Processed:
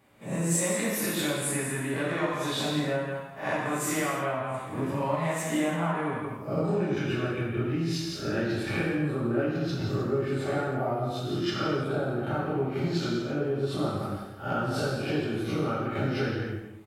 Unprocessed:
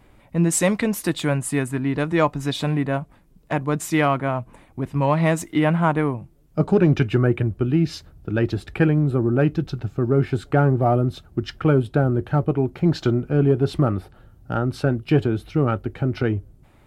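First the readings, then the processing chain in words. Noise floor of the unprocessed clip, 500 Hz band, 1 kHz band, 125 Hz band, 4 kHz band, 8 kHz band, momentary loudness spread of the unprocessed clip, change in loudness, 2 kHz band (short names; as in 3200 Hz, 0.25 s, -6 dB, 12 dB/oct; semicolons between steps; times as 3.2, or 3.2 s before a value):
-54 dBFS, -6.5 dB, -6.0 dB, -10.5 dB, -0.5 dB, -1.5 dB, 9 LU, -7.5 dB, -3.5 dB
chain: spectral swells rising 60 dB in 0.37 s; HPF 86 Hz; high shelf 9700 Hz +3.5 dB; gate -47 dBFS, range -10 dB; low shelf 250 Hz -7 dB; echo 0.168 s -11.5 dB; compressor 10:1, threshold -31 dBFS, peak gain reduction 18 dB; non-linear reverb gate 0.36 s falling, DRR -5.5 dB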